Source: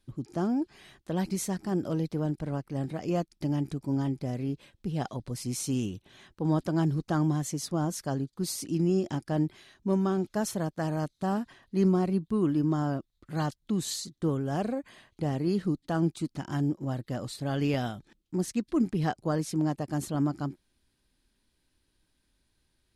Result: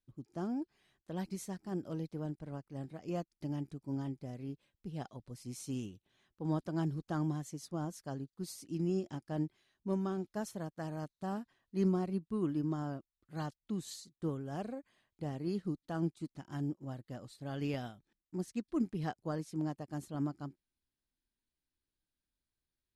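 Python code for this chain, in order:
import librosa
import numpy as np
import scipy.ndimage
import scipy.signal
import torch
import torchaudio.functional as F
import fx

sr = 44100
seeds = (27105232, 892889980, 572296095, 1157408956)

y = fx.upward_expand(x, sr, threshold_db=-47.0, expansion=1.5)
y = F.gain(torch.from_numpy(y), -6.0).numpy()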